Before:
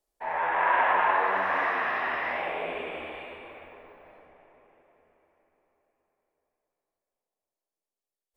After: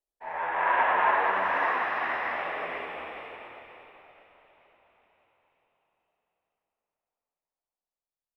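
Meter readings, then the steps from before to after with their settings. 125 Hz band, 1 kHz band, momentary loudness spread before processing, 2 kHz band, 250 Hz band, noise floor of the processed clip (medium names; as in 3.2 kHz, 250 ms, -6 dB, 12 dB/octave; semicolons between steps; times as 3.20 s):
-2.5 dB, -0.5 dB, 18 LU, -0.5 dB, -2.0 dB, under -85 dBFS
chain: frequency-shifting echo 470 ms, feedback 52%, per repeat +41 Hz, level -5 dB; upward expansion 1.5:1, over -45 dBFS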